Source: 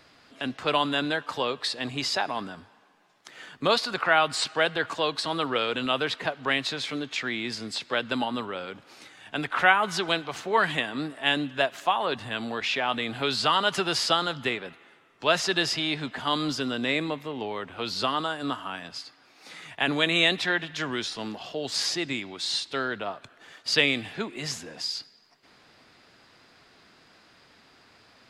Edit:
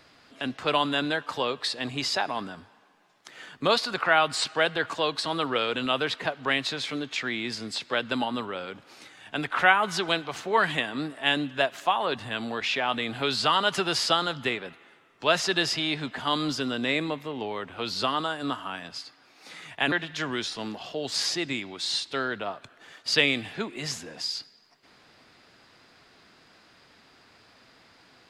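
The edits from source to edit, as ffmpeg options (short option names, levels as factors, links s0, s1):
-filter_complex "[0:a]asplit=2[s0][s1];[s0]atrim=end=19.922[s2];[s1]atrim=start=20.518[s3];[s2][s3]acrossfade=d=0.004:c1=hsin:c2=hsin"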